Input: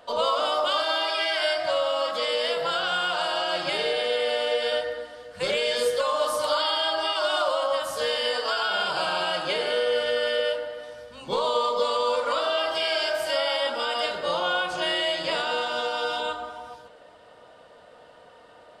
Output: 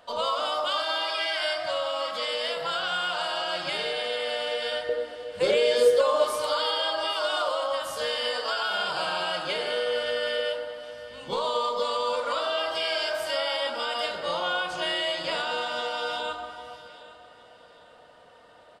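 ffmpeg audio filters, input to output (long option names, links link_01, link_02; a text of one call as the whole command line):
ffmpeg -i in.wav -af "asetnsamples=nb_out_samples=441:pad=0,asendcmd='4.89 equalizer g 9;6.24 equalizer g -2',equalizer=frequency=410:width_type=o:width=1.3:gain=-4.5,aecho=1:1:806|1612|2418:0.133|0.0453|0.0154,volume=-2dB" out.wav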